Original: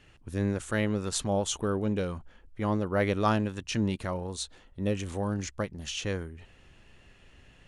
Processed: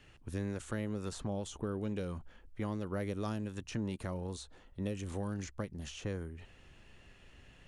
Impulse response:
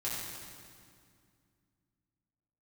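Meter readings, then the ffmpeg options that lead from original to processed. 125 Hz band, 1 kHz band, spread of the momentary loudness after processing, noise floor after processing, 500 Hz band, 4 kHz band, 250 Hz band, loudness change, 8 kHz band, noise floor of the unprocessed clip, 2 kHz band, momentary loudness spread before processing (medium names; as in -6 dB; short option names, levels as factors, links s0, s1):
-7.0 dB, -13.0 dB, 15 LU, -60 dBFS, -9.5 dB, -12.5 dB, -8.0 dB, -9.0 dB, -13.0 dB, -58 dBFS, -11.5 dB, 10 LU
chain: -filter_complex "[0:a]acrossover=split=450|1600|6200[s0][s1][s2][s3];[s0]acompressor=threshold=0.0224:ratio=4[s4];[s1]acompressor=threshold=0.00631:ratio=4[s5];[s2]acompressor=threshold=0.00282:ratio=4[s6];[s3]acompressor=threshold=0.00224:ratio=4[s7];[s4][s5][s6][s7]amix=inputs=4:normalize=0,volume=0.794"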